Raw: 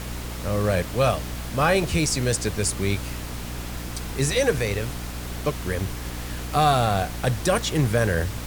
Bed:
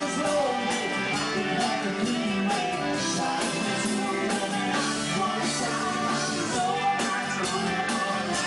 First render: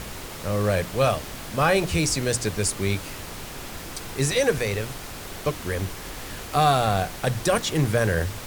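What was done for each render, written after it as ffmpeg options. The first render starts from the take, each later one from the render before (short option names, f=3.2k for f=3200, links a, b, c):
-af "bandreject=f=60:t=h:w=6,bandreject=f=120:t=h:w=6,bandreject=f=180:t=h:w=6,bandreject=f=240:t=h:w=6,bandreject=f=300:t=h:w=6"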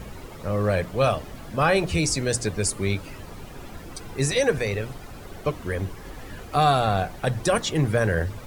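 -af "afftdn=nr=12:nf=-37"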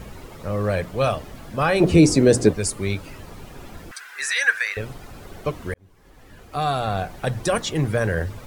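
-filter_complex "[0:a]asettb=1/sr,asplit=3[a][b][c];[a]atrim=end=1.804[d];[b]atrim=start=1.8:end=2.53,asetpts=PTS-STARTPTS,afade=t=in:d=0.004:c=qsin,afade=t=out:st=0.726:d=0.004:c=qsin,equalizer=f=310:w=0.54:g=14.5[e];[c]atrim=start=2.526[f];[d][e]acrossfade=d=0.004:c1=hsin:c2=qsin[g];[g][f]acrossfade=d=0.004:c1=qsin:c2=hsin,asettb=1/sr,asplit=3[h][i][j];[h]atrim=end=3.914[k];[i]atrim=start=3.91:end=4.77,asetpts=PTS-STARTPTS,afade=t=in:d=0.004:c=qsin,afade=t=out:st=0.856:d=0.004:c=qsin,highpass=f=1.6k:t=q:w=4.9[l];[j]atrim=start=4.766[m];[k][l]acrossfade=d=0.004:c1=hsin:c2=qsin[n];[n][m]acrossfade=d=0.004:c1=qsin:c2=hsin,asplit=2[o][p];[o]atrim=end=5.74,asetpts=PTS-STARTPTS,afade=t=out:st=5.736:d=0.004:c=hsin[q];[p]atrim=start=5.74,asetpts=PTS-STARTPTS,afade=t=in:d=1.47[r];[q][r]concat=n=2:v=0:a=1"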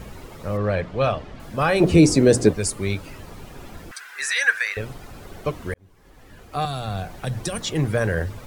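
-filter_complex "[0:a]asettb=1/sr,asplit=3[a][b][c];[a]atrim=end=0.574[d];[b]atrim=start=0.57:end=1.4,asetpts=PTS-STARTPTS,afade=t=in:d=0.004:c=qsin,afade=t=out:st=0.826:d=0.004:c=qsin,lowpass=4.2k[e];[c]atrim=start=1.396[f];[d][e]acrossfade=d=0.004:c1=hsin:c2=qsin[g];[g][f]acrossfade=d=0.004:c1=qsin:c2=hsin,asettb=1/sr,asplit=3[h][i][j];[h]atrim=end=6.654[k];[i]atrim=start=6.65:end=7.71,asetpts=PTS-STARTPTS,afade=t=in:d=0.004:c=qsin,afade=t=out:st=1.056:d=0.004:c=qsin,acrossover=split=230|3000[l][m][n];[m]acompressor=threshold=-29dB:ratio=6:attack=3.2:release=140:knee=2.83:detection=peak[o];[l][o][n]amix=inputs=3:normalize=0[p];[j]atrim=start=7.706[q];[k][p]acrossfade=d=0.004:c1=hsin:c2=qsin[r];[r][q]acrossfade=d=0.004:c1=qsin:c2=hsin"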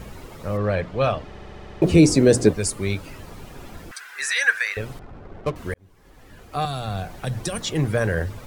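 -filter_complex "[0:a]asettb=1/sr,asplit=3[a][b][c];[a]atrim=end=4.994[d];[b]atrim=start=4.99:end=5.56,asetpts=PTS-STARTPTS,afade=t=in:d=0.004:c=qsin,afade=t=out:st=0.566:d=0.004:c=qsin,adynamicsmooth=sensitivity=7.5:basefreq=820[e];[c]atrim=start=5.556[f];[d][e]acrossfade=d=0.004:c1=hsin:c2=qsin[g];[g][f]acrossfade=d=0.004:c1=qsin:c2=hsin,asplit=9[h][i][j][k][l][m][n][o][p];[h]atrim=end=1.332[q];[i]atrim=start=1.258:end=1.332[r];[j]atrim=start=1.258:end=1.332[s];[k]atrim=start=1.258:end=1.332[t];[l]atrim=start=1.258:end=1.332[u];[m]atrim=start=1.258:end=1.332[v];[n]atrim=start=1.258:end=1.332[w];[o]atrim=start=1.258:end=1.332[x];[p]atrim=start=1.818[y];[q][r]acrossfade=d=0.004:c1=hsin:c2=hsin[z];[z][s]acrossfade=d=0.004:c1=hsin:c2=hsin[aa];[aa][t]acrossfade=d=0.004:c1=hsin:c2=hsin[ab];[ab][u]acrossfade=d=0.004:c1=hsin:c2=hsin[ac];[ac][v]acrossfade=d=0.004:c1=hsin:c2=hsin[ad];[ad][w]acrossfade=d=0.004:c1=hsin:c2=hsin[ae];[ae][x]acrossfade=d=0.004:c1=hsin:c2=hsin[af];[af][y]acrossfade=d=0.004:c1=hsin:c2=hsin"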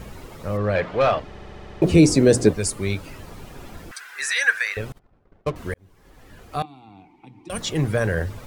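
-filter_complex "[0:a]asettb=1/sr,asplit=3[a][b][c];[a]atrim=end=0.754[d];[b]atrim=start=0.75:end=1.2,asetpts=PTS-STARTPTS,afade=t=in:d=0.004:c=qsin,afade=t=out:st=0.446:d=0.004:c=qsin,asplit=2[e][f];[f]highpass=f=720:p=1,volume=15dB,asoftclip=type=tanh:threshold=-9dB[g];[e][g]amix=inputs=2:normalize=0,lowpass=f=2.3k:p=1,volume=-6dB[h];[c]atrim=start=1.196[i];[d][h]acrossfade=d=0.004:c1=hsin:c2=qsin[j];[j][i]acrossfade=d=0.004:c1=qsin:c2=hsin,asettb=1/sr,asplit=3[k][l][m];[k]atrim=end=4.924[n];[l]atrim=start=4.92:end=5.54,asetpts=PTS-STARTPTS,afade=t=in:d=0.004:c=qsin,afade=t=out:st=0.616:d=0.004:c=qsin,agate=range=-33dB:threshold=-28dB:ratio=3:release=100:detection=peak[o];[m]atrim=start=5.536[p];[n][o]acrossfade=d=0.004:c1=hsin:c2=qsin[q];[q][p]acrossfade=d=0.004:c1=qsin:c2=hsin,asettb=1/sr,asplit=3[r][s][t];[r]atrim=end=6.624[u];[s]atrim=start=6.62:end=7.5,asetpts=PTS-STARTPTS,afade=t=in:d=0.004:c=qsin,afade=t=out:st=0.876:d=0.004:c=qsin,asplit=3[v][w][x];[v]bandpass=f=300:t=q:w=8,volume=0dB[y];[w]bandpass=f=870:t=q:w=8,volume=-6dB[z];[x]bandpass=f=2.24k:t=q:w=8,volume=-9dB[aa];[y][z][aa]amix=inputs=3:normalize=0[ab];[t]atrim=start=7.496[ac];[u][ab]acrossfade=d=0.004:c1=hsin:c2=qsin[ad];[ad][ac]acrossfade=d=0.004:c1=qsin:c2=hsin"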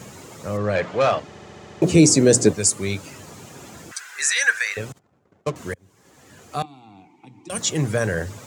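-af "highpass=f=97:w=0.5412,highpass=f=97:w=1.3066,equalizer=f=7k:t=o:w=0.72:g=11.5"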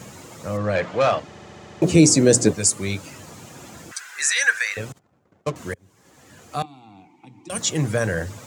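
-af "bandreject=f=410:w=12"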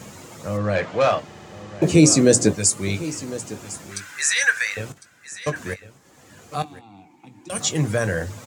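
-filter_complex "[0:a]asplit=2[a][b];[b]adelay=20,volume=-12dB[c];[a][c]amix=inputs=2:normalize=0,aecho=1:1:1054:0.158"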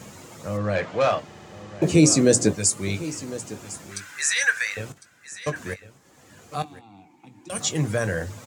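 -af "volume=-2.5dB"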